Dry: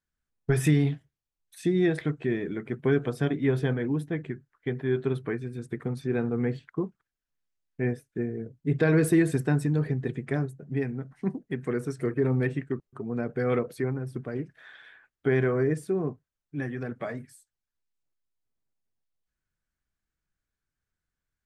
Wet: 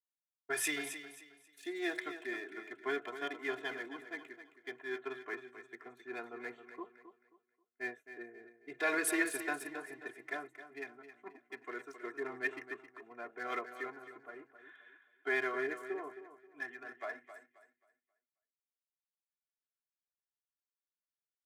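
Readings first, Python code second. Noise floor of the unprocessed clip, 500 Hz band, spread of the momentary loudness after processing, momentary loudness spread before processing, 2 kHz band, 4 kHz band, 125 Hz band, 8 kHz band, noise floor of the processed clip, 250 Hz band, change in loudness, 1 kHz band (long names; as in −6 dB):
below −85 dBFS, −13.5 dB, 19 LU, 11 LU, −1.0 dB, −1.5 dB, below −40 dB, +1.0 dB, below −85 dBFS, −17.5 dB, −11.0 dB, −2.5 dB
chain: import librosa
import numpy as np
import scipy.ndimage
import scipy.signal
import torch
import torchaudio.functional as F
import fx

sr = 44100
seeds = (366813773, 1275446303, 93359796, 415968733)

y = fx.wiener(x, sr, points=9)
y = scipy.signal.sosfilt(scipy.signal.butter(2, 920.0, 'highpass', fs=sr, output='sos'), y)
y = y + 0.95 * np.pad(y, (int(2.9 * sr / 1000.0), 0))[:len(y)]
y = fx.echo_feedback(y, sr, ms=267, feedback_pct=41, wet_db=-9.0)
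y = fx.band_widen(y, sr, depth_pct=40)
y = F.gain(torch.from_numpy(y), -4.0).numpy()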